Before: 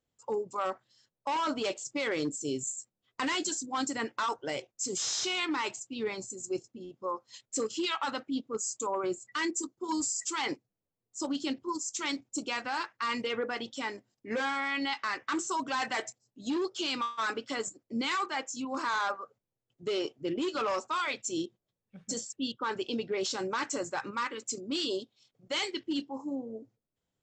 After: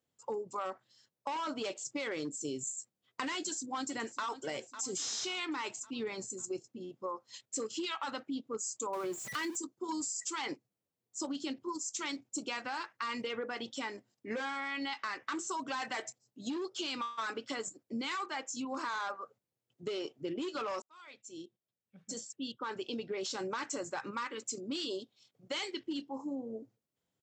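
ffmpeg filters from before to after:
ffmpeg -i in.wav -filter_complex "[0:a]asplit=2[link_01][link_02];[link_02]afade=type=in:start_time=3.34:duration=0.01,afade=type=out:start_time=4.25:duration=0.01,aecho=0:1:550|1100|1650|2200:0.149624|0.0748118|0.0374059|0.0187029[link_03];[link_01][link_03]amix=inputs=2:normalize=0,asettb=1/sr,asplit=3[link_04][link_05][link_06];[link_04]atrim=end=8.934[link_07];[link_05]atrim=start=8.93:end=9.57,asetpts=PTS-STARTPTS,afade=type=in:duration=0.004:curve=qsin,afade=type=out:start_time=0.636:duration=0.004:curve=qsin,aeval=exprs='val(0)+0.5*0.0133*sgn(val(0))':channel_layout=same[link_08];[link_06]atrim=start=9.566[link_09];[link_07][link_08]acrossfade=duration=0.004:curve1=hsin:curve2=qsin[link_10];[link_10][link_09]acrossfade=duration=0.004:curve1=qsin:curve2=hsin,asplit=2[link_11][link_12];[link_11]atrim=end=20.82,asetpts=PTS-STARTPTS,afade=type=out:start_time=20.816:duration=0.004:curve=hsin[link_13];[link_12]atrim=start=20.82,asetpts=PTS-STARTPTS,afade=type=in:duration=2.67[link_14];[link_13][link_14]concat=n=2:v=0:a=1,highpass=100,acompressor=threshold=-35dB:ratio=4" out.wav

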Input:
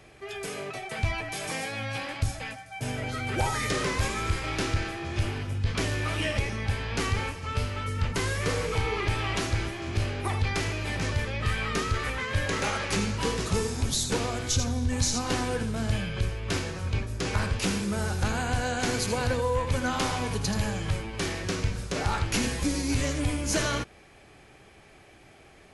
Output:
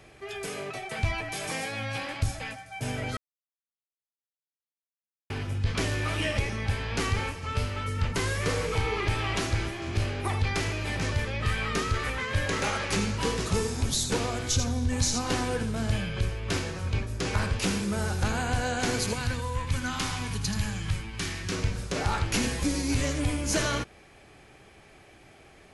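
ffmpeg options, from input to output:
ffmpeg -i in.wav -filter_complex "[0:a]asettb=1/sr,asplit=3[link_01][link_02][link_03];[link_01]atrim=end=19.134[link_04];[link_02]atrim=start=19.13:end=21.52,asetpts=PTS-STARTPTS,afade=type=in:duration=0.004:curve=qsin,afade=type=out:start_time=2.386:duration=0.004:curve=qsin,equalizer=frequency=530:width=0.99:gain=-12.5[link_05];[link_03]atrim=start=21.516[link_06];[link_04][link_05]acrossfade=duration=0.004:curve1=hsin:curve2=qsin[link_07];[link_07][link_06]acrossfade=duration=0.004:curve1=qsin:curve2=hsin,asplit=3[link_08][link_09][link_10];[link_08]atrim=end=3.17,asetpts=PTS-STARTPTS,afade=type=out:start_time=3.166:duration=0.004:curve=hsin[link_11];[link_09]atrim=start=3.17:end=5.3,asetpts=PTS-STARTPTS,volume=0[link_12];[link_10]atrim=start=5.3,asetpts=PTS-STARTPTS,afade=type=in:duration=0.004:curve=hsin[link_13];[link_11][link_12][link_13]concat=n=3:v=0:a=1" out.wav

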